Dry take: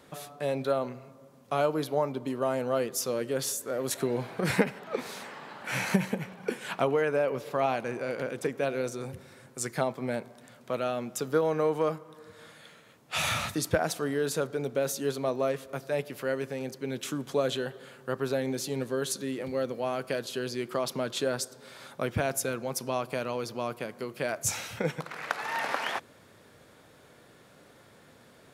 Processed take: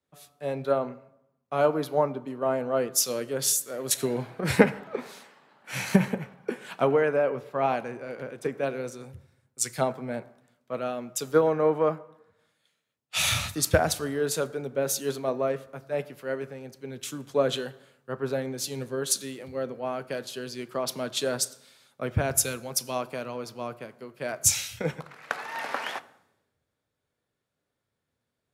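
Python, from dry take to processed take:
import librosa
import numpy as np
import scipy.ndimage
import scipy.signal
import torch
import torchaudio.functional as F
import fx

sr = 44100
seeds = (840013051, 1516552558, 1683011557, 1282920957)

y = fx.rev_fdn(x, sr, rt60_s=1.5, lf_ratio=0.95, hf_ratio=0.55, size_ms=72.0, drr_db=14.0)
y = fx.band_widen(y, sr, depth_pct=100)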